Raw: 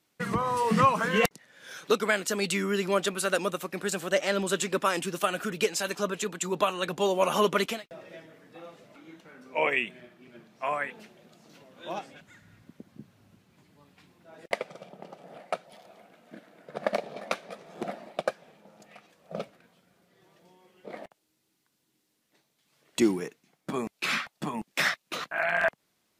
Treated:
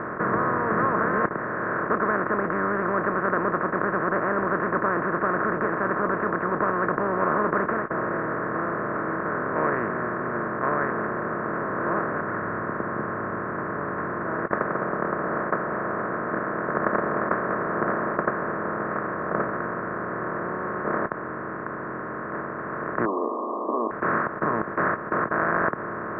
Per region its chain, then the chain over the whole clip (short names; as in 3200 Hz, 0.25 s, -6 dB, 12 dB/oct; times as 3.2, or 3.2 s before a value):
23.05–23.91 switching spikes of -23 dBFS + brick-wall FIR band-pass 240–1200 Hz
whole clip: per-bin compression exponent 0.2; Chebyshev low-pass 1800 Hz, order 5; bell 1400 Hz +5.5 dB 0.33 oct; gain -8 dB